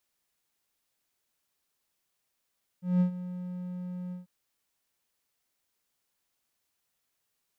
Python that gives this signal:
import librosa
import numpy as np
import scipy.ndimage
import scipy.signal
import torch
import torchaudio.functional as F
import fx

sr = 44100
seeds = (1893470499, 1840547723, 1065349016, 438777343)

y = fx.adsr_tone(sr, wave='triangle', hz=180.0, attack_ms=185.0, decay_ms=100.0, sustain_db=-15.0, held_s=1.3, release_ms=142.0, level_db=-17.5)